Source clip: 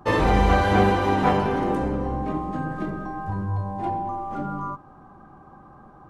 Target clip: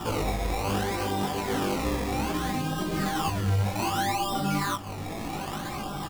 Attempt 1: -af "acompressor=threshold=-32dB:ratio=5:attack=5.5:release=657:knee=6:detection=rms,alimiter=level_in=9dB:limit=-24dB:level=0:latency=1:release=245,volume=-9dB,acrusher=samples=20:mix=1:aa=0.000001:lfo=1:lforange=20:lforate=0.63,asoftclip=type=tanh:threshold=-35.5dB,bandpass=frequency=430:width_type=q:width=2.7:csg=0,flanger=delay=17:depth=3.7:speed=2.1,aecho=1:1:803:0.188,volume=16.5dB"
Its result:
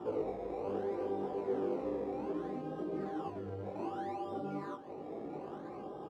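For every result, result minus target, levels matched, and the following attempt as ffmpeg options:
soft clipping: distortion +16 dB; echo 616 ms early; 500 Hz band +7.0 dB
-af "acompressor=threshold=-32dB:ratio=5:attack=5.5:release=657:knee=6:detection=rms,alimiter=level_in=9dB:limit=-24dB:level=0:latency=1:release=245,volume=-9dB,acrusher=samples=20:mix=1:aa=0.000001:lfo=1:lforange=20:lforate=0.63,asoftclip=type=tanh:threshold=-26dB,bandpass=frequency=430:width_type=q:width=2.7:csg=0,flanger=delay=17:depth=3.7:speed=2.1,aecho=1:1:803:0.188,volume=16.5dB"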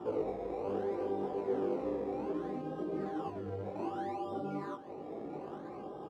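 echo 616 ms early; 500 Hz band +7.0 dB
-af "acompressor=threshold=-32dB:ratio=5:attack=5.5:release=657:knee=6:detection=rms,alimiter=level_in=9dB:limit=-24dB:level=0:latency=1:release=245,volume=-9dB,acrusher=samples=20:mix=1:aa=0.000001:lfo=1:lforange=20:lforate=0.63,asoftclip=type=tanh:threshold=-26dB,bandpass=frequency=430:width_type=q:width=2.7:csg=0,flanger=delay=17:depth=3.7:speed=2.1,aecho=1:1:1419:0.188,volume=16.5dB"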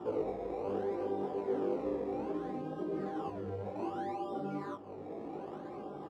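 500 Hz band +7.0 dB
-af "acompressor=threshold=-32dB:ratio=5:attack=5.5:release=657:knee=6:detection=rms,alimiter=level_in=9dB:limit=-24dB:level=0:latency=1:release=245,volume=-9dB,acrusher=samples=20:mix=1:aa=0.000001:lfo=1:lforange=20:lforate=0.63,asoftclip=type=tanh:threshold=-26dB,flanger=delay=17:depth=3.7:speed=2.1,aecho=1:1:1419:0.188,volume=16.5dB"

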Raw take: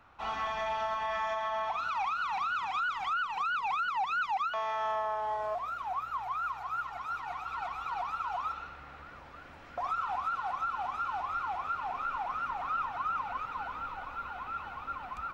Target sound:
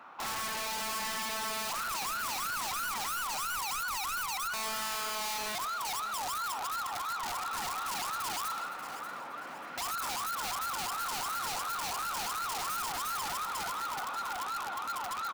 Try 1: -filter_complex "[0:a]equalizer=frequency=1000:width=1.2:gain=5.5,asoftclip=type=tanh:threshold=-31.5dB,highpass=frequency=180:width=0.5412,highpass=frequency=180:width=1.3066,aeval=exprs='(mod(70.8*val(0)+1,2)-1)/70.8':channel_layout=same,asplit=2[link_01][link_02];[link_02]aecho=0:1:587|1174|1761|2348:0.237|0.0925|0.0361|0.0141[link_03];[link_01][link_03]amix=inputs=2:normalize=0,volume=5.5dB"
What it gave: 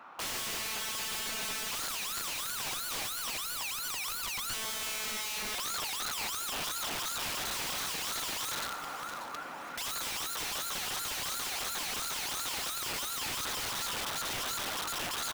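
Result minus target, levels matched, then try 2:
soft clipping: distortion −5 dB
-filter_complex "[0:a]equalizer=frequency=1000:width=1.2:gain=5.5,asoftclip=type=tanh:threshold=-39.5dB,highpass=frequency=180:width=0.5412,highpass=frequency=180:width=1.3066,aeval=exprs='(mod(70.8*val(0)+1,2)-1)/70.8':channel_layout=same,asplit=2[link_01][link_02];[link_02]aecho=0:1:587|1174|1761|2348:0.237|0.0925|0.0361|0.0141[link_03];[link_01][link_03]amix=inputs=2:normalize=0,volume=5.5dB"

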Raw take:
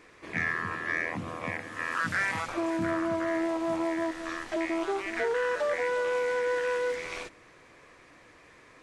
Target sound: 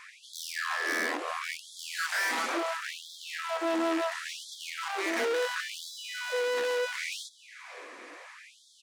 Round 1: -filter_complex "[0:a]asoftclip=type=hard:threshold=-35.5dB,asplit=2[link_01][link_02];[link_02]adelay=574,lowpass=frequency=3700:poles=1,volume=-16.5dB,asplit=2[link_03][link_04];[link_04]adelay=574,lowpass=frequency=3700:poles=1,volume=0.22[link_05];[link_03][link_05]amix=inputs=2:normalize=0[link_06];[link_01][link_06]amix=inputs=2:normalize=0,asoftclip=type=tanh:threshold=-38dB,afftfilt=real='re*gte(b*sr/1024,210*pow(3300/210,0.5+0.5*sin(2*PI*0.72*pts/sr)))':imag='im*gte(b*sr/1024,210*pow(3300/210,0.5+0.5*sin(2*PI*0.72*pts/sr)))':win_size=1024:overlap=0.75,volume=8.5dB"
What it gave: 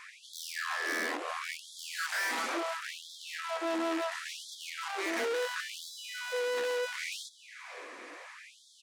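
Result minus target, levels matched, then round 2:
soft clipping: distortion +18 dB
-filter_complex "[0:a]asoftclip=type=hard:threshold=-35.5dB,asplit=2[link_01][link_02];[link_02]adelay=574,lowpass=frequency=3700:poles=1,volume=-16.5dB,asplit=2[link_03][link_04];[link_04]adelay=574,lowpass=frequency=3700:poles=1,volume=0.22[link_05];[link_03][link_05]amix=inputs=2:normalize=0[link_06];[link_01][link_06]amix=inputs=2:normalize=0,asoftclip=type=tanh:threshold=-27dB,afftfilt=real='re*gte(b*sr/1024,210*pow(3300/210,0.5+0.5*sin(2*PI*0.72*pts/sr)))':imag='im*gte(b*sr/1024,210*pow(3300/210,0.5+0.5*sin(2*PI*0.72*pts/sr)))':win_size=1024:overlap=0.75,volume=8.5dB"

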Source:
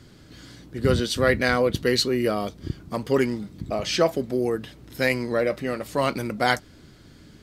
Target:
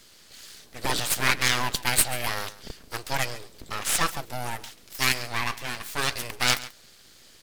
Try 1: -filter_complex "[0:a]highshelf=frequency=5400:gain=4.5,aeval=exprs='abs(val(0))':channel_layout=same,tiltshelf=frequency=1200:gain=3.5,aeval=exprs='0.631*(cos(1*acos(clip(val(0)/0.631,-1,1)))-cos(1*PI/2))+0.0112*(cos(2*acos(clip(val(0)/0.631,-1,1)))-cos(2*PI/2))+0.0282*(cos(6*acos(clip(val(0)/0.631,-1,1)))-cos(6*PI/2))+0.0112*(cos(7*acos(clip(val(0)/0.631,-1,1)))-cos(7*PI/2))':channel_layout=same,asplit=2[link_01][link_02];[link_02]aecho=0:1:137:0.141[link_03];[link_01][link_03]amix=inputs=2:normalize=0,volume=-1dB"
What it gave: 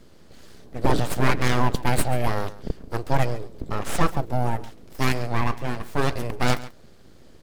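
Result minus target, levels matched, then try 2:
1,000 Hz band +4.0 dB
-filter_complex "[0:a]highshelf=frequency=5400:gain=4.5,aeval=exprs='abs(val(0))':channel_layout=same,tiltshelf=frequency=1200:gain=-8,aeval=exprs='0.631*(cos(1*acos(clip(val(0)/0.631,-1,1)))-cos(1*PI/2))+0.0112*(cos(2*acos(clip(val(0)/0.631,-1,1)))-cos(2*PI/2))+0.0282*(cos(6*acos(clip(val(0)/0.631,-1,1)))-cos(6*PI/2))+0.0112*(cos(7*acos(clip(val(0)/0.631,-1,1)))-cos(7*PI/2))':channel_layout=same,asplit=2[link_01][link_02];[link_02]aecho=0:1:137:0.141[link_03];[link_01][link_03]amix=inputs=2:normalize=0,volume=-1dB"

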